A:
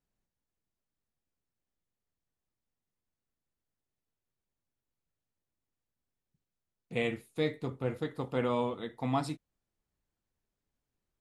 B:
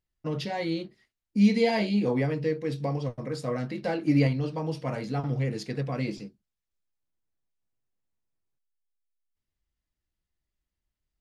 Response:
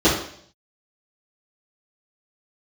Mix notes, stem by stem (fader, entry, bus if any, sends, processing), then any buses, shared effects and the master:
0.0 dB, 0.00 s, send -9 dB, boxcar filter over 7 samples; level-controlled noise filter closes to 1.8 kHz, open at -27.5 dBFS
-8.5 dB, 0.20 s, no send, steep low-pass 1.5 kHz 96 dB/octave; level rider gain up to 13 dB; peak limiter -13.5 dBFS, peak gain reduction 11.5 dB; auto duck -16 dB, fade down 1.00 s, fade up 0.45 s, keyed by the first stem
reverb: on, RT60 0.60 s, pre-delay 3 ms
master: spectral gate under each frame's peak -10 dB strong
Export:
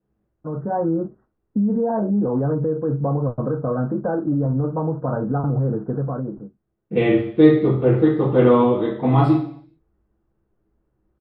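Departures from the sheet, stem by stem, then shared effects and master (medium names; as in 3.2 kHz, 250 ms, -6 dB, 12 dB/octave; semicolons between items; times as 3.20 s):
stem B -8.5 dB -> -0.5 dB; master: missing spectral gate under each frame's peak -10 dB strong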